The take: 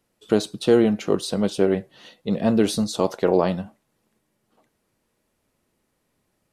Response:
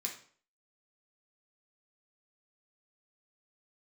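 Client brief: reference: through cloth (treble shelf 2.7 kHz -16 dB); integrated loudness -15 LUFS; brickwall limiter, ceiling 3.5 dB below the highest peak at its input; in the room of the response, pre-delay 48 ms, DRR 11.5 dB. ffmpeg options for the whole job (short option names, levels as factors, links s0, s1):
-filter_complex "[0:a]alimiter=limit=0.335:level=0:latency=1,asplit=2[s0][s1];[1:a]atrim=start_sample=2205,adelay=48[s2];[s1][s2]afir=irnorm=-1:irlink=0,volume=0.251[s3];[s0][s3]amix=inputs=2:normalize=0,highshelf=f=2700:g=-16,volume=2.66"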